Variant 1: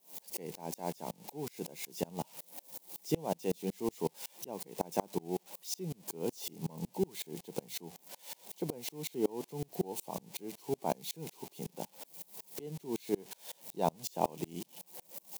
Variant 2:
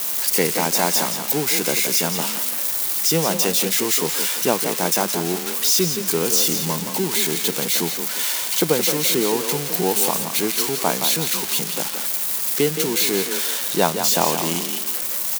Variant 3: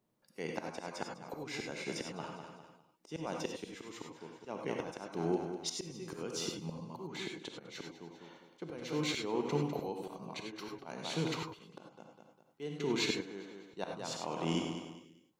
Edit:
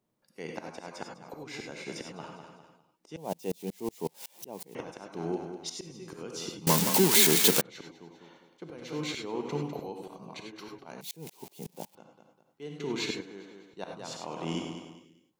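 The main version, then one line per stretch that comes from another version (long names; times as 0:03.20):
3
0:03.17–0:04.75: punch in from 1
0:06.67–0:07.61: punch in from 2
0:11.01–0:11.95: punch in from 1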